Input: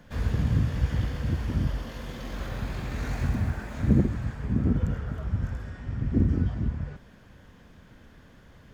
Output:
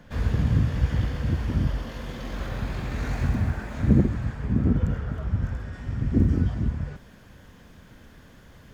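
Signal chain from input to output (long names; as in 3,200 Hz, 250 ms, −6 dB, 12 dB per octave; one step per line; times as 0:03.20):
high-shelf EQ 6,100 Hz −4 dB, from 0:05.73 +7 dB
level +2.5 dB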